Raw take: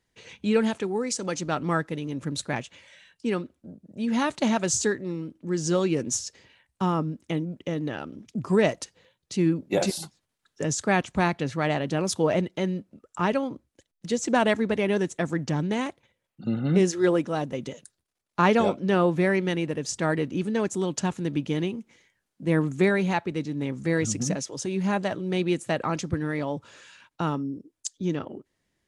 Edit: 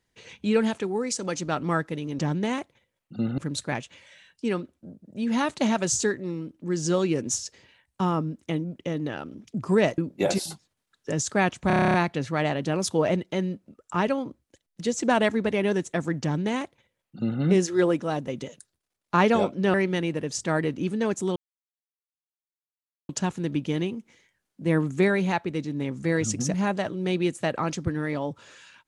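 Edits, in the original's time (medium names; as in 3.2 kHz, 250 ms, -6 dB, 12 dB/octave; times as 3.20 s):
8.79–9.50 s: delete
11.19 s: stutter 0.03 s, 10 plays
15.47–16.66 s: copy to 2.19 s
18.99–19.28 s: delete
20.90 s: insert silence 1.73 s
24.35–24.80 s: delete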